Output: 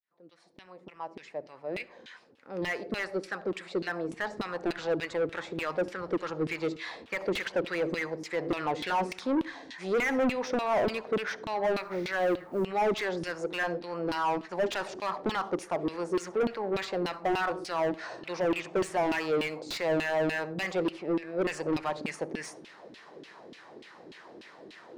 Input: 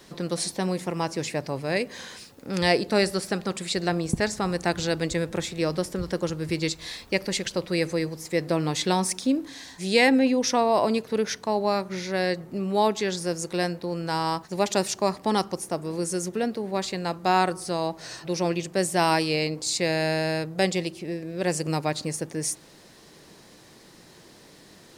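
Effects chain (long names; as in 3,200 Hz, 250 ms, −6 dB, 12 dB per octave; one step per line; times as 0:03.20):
fade in at the beginning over 7.22 s
high-shelf EQ 10,000 Hz −9.5 dB
in parallel at 0 dB: brickwall limiter −16 dBFS, peak gain reduction 10 dB
on the sum: auto-filter band-pass saw down 3.4 Hz 270–3,200 Hz
soft clipping −27.5 dBFS, distortion −7 dB
0:11.76–0:12.65: log-companded quantiser 8 bits
on a send at −20.5 dB: convolution reverb RT60 0.35 s, pre-delay 60 ms
on the sum: slew-rate limiting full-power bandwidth 51 Hz
level +4.5 dB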